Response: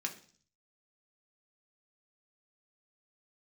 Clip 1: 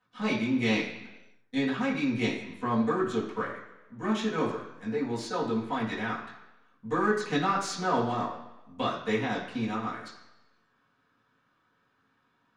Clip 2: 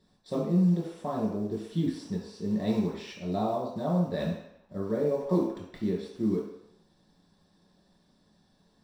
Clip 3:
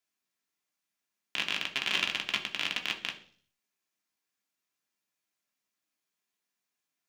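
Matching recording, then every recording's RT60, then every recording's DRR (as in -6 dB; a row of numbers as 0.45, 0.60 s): 3; 1.0, 0.75, 0.45 s; -10.0, -5.5, 1.5 dB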